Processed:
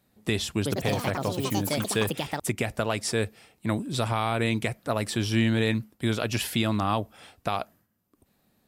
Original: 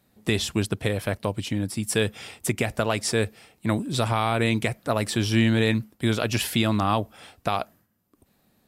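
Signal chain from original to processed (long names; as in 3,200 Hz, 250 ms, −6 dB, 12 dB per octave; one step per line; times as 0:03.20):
0:00.53–0:02.88: delay with pitch and tempo change per echo 107 ms, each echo +5 semitones, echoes 3
level −3 dB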